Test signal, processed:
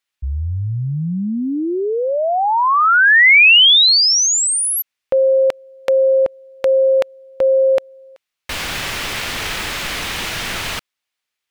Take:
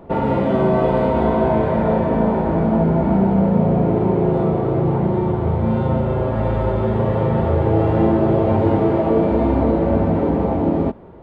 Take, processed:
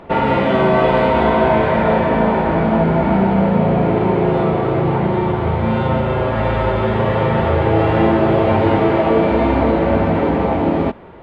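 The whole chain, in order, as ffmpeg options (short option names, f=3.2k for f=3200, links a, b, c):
-af "equalizer=f=2.5k:w=0.47:g=13"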